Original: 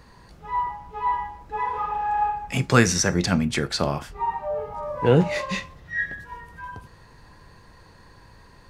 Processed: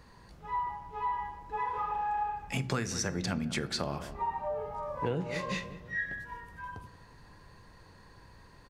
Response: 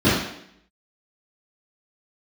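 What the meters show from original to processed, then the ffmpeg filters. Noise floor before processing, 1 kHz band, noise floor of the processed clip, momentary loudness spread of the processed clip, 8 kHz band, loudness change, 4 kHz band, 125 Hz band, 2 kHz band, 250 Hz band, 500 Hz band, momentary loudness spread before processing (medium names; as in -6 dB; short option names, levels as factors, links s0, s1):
-51 dBFS, -8.0 dB, -56 dBFS, 11 LU, -11.5 dB, -10.5 dB, -9.0 dB, -12.0 dB, -9.5 dB, -12.0 dB, -12.0 dB, 16 LU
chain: -filter_complex "[0:a]asplit=2[s0][s1];[s1]adelay=189,lowpass=f=1100:p=1,volume=0.178,asplit=2[s2][s3];[s3]adelay=189,lowpass=f=1100:p=1,volume=0.51,asplit=2[s4][s5];[s5]adelay=189,lowpass=f=1100:p=1,volume=0.51,asplit=2[s6][s7];[s7]adelay=189,lowpass=f=1100:p=1,volume=0.51,asplit=2[s8][s9];[s9]adelay=189,lowpass=f=1100:p=1,volume=0.51[s10];[s0][s2][s4][s6][s8][s10]amix=inputs=6:normalize=0,acompressor=threshold=0.0708:ratio=8,asplit=2[s11][s12];[1:a]atrim=start_sample=2205,adelay=39[s13];[s12][s13]afir=irnorm=-1:irlink=0,volume=0.00841[s14];[s11][s14]amix=inputs=2:normalize=0,volume=0.531"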